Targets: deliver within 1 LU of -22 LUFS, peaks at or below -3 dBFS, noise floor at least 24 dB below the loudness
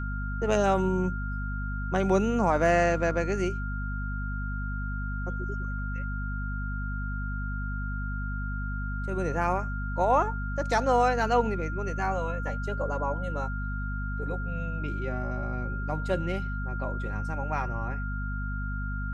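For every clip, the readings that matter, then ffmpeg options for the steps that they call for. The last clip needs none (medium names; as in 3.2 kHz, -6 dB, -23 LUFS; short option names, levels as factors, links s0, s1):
hum 50 Hz; highest harmonic 250 Hz; hum level -30 dBFS; steady tone 1.4 kHz; tone level -37 dBFS; loudness -29.5 LUFS; peak level -11.0 dBFS; loudness target -22.0 LUFS
-> -af "bandreject=f=50:t=h:w=6,bandreject=f=100:t=h:w=6,bandreject=f=150:t=h:w=6,bandreject=f=200:t=h:w=6,bandreject=f=250:t=h:w=6"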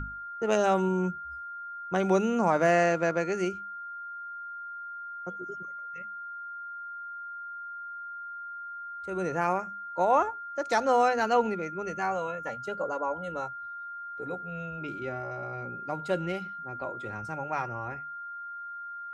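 hum not found; steady tone 1.4 kHz; tone level -37 dBFS
-> -af "bandreject=f=1400:w=30"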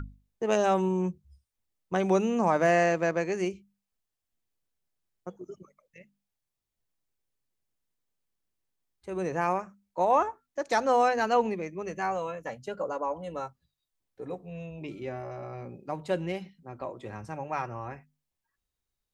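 steady tone not found; loudness -29.0 LUFS; peak level -12.0 dBFS; loudness target -22.0 LUFS
-> -af "volume=2.24"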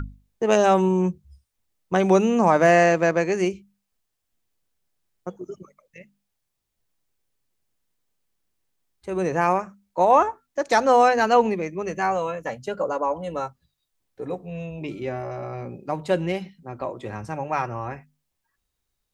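loudness -22.0 LUFS; peak level -5.0 dBFS; noise floor -79 dBFS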